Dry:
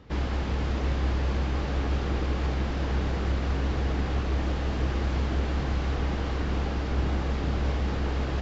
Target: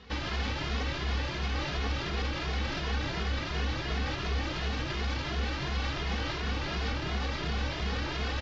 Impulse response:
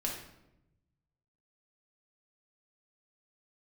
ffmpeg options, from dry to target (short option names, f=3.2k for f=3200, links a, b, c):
-filter_complex "[0:a]lowpass=f=5.7k:w=0.5412,lowpass=f=5.7k:w=1.3066,tiltshelf=f=1.4k:g=-7,alimiter=level_in=3.5dB:limit=-24dB:level=0:latency=1,volume=-3.5dB,asplit=2[a][b];[b]adelay=2.4,afreqshift=2.8[c];[a][c]amix=inputs=2:normalize=1,volume=7dB"